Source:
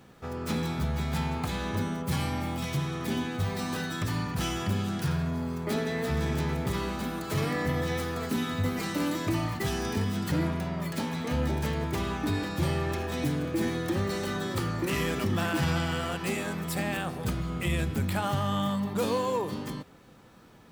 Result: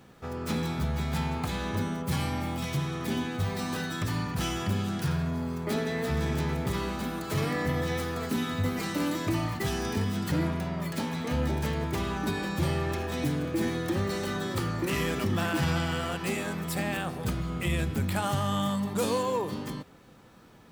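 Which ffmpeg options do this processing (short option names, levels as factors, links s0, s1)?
-filter_complex "[0:a]asettb=1/sr,asplit=3[s0][s1][s2];[s0]atrim=end=12.164[s3];[s1]atrim=start=12.16:end=12.59,asetpts=PTS-STARTPTS,afade=t=in:d=0.004:c=qsin,afade=t=out:st=0.426:d=0.004:c=qsin,aecho=1:1:5.3:0.62,atrim=end_sample=18963[s4];[s2]atrim=start=12.586[s5];[s3][s4]acrossfade=d=0.004:c1=hsin:c2=qsin[s6];[s6][s5]acrossfade=d=0.004:c1=qsin:c2=hsin,asettb=1/sr,asplit=3[s7][s8][s9];[s7]atrim=end=18.164[s10];[s8]atrim=start=18.16:end=19.23,asetpts=PTS-STARTPTS,afade=t=in:d=0.004:c=qsin,afade=t=out:st=1.066:d=0.004:c=qsin,equalizer=f=8700:w=0.89:g=6.5[s11];[s9]atrim=start=19.226[s12];[s10][s11]acrossfade=d=0.004:c1=hsin:c2=qsin[s13];[s13][s12]acrossfade=d=0.004:c1=qsin:c2=hsin"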